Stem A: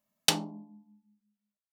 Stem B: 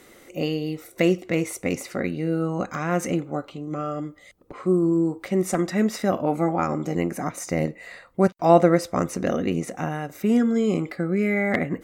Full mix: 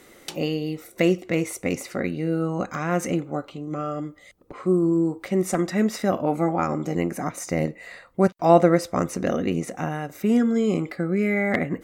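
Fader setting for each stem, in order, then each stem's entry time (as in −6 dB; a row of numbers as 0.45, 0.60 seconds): −12.0, 0.0 decibels; 0.00, 0.00 seconds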